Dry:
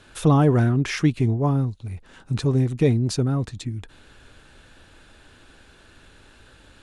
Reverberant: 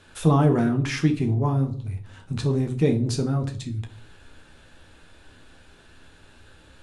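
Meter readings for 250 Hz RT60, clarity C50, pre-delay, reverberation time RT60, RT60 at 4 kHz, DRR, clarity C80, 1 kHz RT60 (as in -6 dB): 0.65 s, 13.0 dB, 12 ms, 0.50 s, 0.35 s, 4.0 dB, 18.0 dB, 0.40 s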